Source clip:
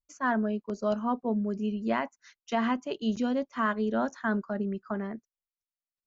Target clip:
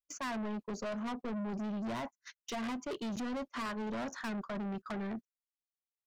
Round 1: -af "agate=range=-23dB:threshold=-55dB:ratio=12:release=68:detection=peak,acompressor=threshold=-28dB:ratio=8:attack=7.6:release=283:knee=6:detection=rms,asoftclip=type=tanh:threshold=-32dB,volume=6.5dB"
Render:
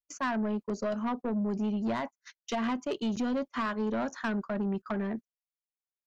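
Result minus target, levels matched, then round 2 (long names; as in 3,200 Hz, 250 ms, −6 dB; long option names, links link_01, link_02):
soft clipping: distortion −7 dB
-af "agate=range=-23dB:threshold=-55dB:ratio=12:release=68:detection=peak,acompressor=threshold=-28dB:ratio=8:attack=7.6:release=283:knee=6:detection=rms,asoftclip=type=tanh:threshold=-42dB,volume=6.5dB"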